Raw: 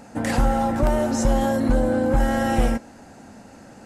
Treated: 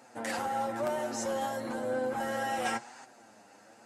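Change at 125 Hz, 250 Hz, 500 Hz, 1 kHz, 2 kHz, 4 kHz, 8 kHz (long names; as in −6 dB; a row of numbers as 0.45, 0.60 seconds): −24.0, −17.0, −9.5, −7.5, −6.5, −6.0, −7.0 decibels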